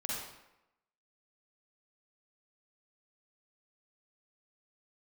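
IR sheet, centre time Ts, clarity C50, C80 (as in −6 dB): 79 ms, −2.5 dB, 2.0 dB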